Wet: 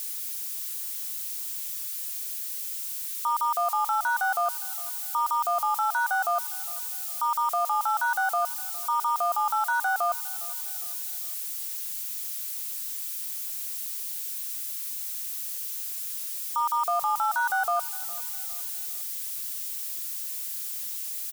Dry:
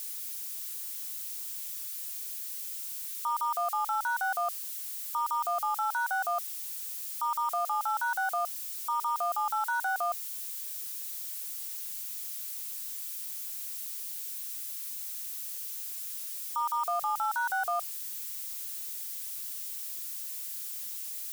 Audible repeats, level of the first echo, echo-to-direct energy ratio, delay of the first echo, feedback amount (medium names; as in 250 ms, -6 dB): 3, -20.0 dB, -19.0 dB, 407 ms, 44%